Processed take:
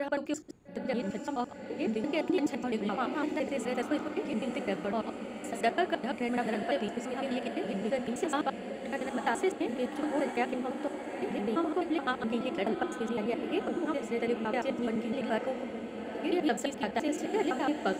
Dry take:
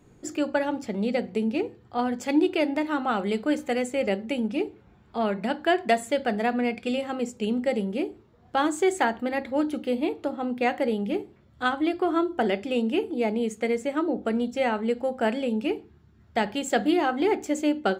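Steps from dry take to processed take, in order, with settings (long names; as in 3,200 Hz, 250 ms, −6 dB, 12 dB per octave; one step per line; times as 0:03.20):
slices reordered back to front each 85 ms, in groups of 8
feedback delay with all-pass diffusion 883 ms, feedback 63%, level −8 dB
level −6.5 dB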